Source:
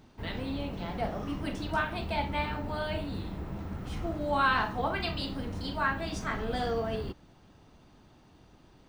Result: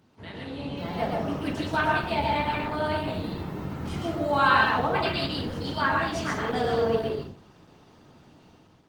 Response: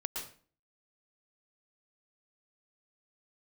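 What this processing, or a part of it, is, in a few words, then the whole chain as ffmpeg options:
far-field microphone of a smart speaker: -filter_complex "[1:a]atrim=start_sample=2205[s0];[0:a][s0]afir=irnorm=-1:irlink=0,highpass=f=86:w=0.5412,highpass=f=86:w=1.3066,dynaudnorm=f=530:g=3:m=2.37,volume=0.794" -ar 48000 -c:a libopus -b:a 16k

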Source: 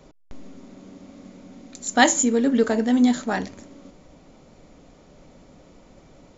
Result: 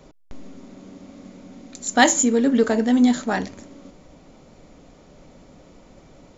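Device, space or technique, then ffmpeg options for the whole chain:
parallel distortion: -filter_complex "[0:a]asplit=2[s0][s1];[s1]asoftclip=type=hard:threshold=0.168,volume=0.224[s2];[s0][s2]amix=inputs=2:normalize=0"

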